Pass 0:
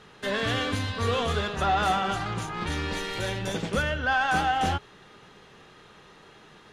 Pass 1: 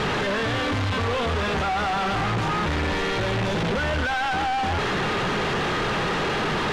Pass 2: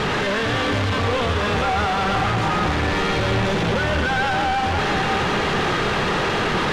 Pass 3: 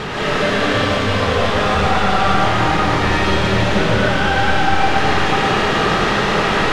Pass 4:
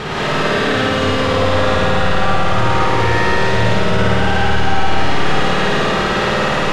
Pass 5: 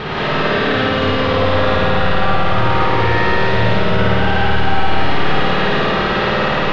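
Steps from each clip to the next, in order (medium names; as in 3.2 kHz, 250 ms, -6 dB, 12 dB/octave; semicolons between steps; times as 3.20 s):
one-bit comparator; Bessel low-pass 2.6 kHz, order 2; trim +6 dB
two-band feedback delay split 1.4 kHz, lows 483 ms, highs 114 ms, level -6.5 dB; trim +2.5 dB
algorithmic reverb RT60 1.8 s, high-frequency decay 0.95×, pre-delay 110 ms, DRR -7 dB; trim -3 dB
peak limiter -11 dBFS, peak gain reduction 9 dB; on a send: flutter echo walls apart 9.2 m, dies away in 1.4 s
low-pass 4.5 kHz 24 dB/octave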